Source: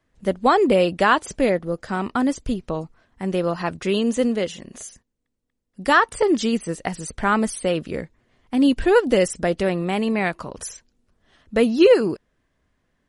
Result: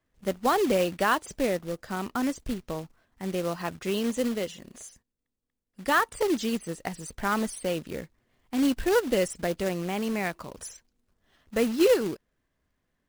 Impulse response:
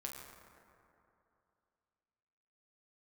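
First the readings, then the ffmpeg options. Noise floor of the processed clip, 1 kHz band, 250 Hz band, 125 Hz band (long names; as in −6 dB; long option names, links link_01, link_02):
−83 dBFS, −7.5 dB, −7.5 dB, −7.5 dB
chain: -af "acrusher=bits=3:mode=log:mix=0:aa=0.000001,volume=-7.5dB"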